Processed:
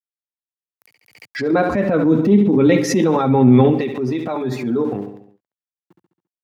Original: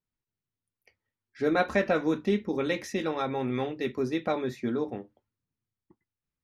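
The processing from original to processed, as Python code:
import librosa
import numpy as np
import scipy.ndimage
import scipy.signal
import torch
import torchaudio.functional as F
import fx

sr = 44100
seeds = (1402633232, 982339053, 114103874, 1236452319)

y = fx.bin_expand(x, sr, power=1.5)
y = fx.recorder_agc(y, sr, target_db=-15.5, rise_db_per_s=57.0, max_gain_db=30)
y = fx.transient(y, sr, attack_db=-8, sustain_db=-3)
y = np.where(np.abs(y) >= 10.0 ** (-52.0 / 20.0), y, 0.0)
y = fx.low_shelf(y, sr, hz=480.0, db=12.0, at=(1.52, 3.72), fade=0.02)
y = fx.echo_feedback(y, sr, ms=69, feedback_pct=54, wet_db=-14)
y = fx.transient(y, sr, attack_db=-3, sustain_db=8)
y = scipy.signal.sosfilt(scipy.signal.butter(4, 110.0, 'highpass', fs=sr, output='sos'), y)
y = fx.high_shelf(y, sr, hz=3500.0, db=-10.5)
y = fx.pre_swell(y, sr, db_per_s=98.0)
y = F.gain(torch.from_numpy(y), 5.0).numpy()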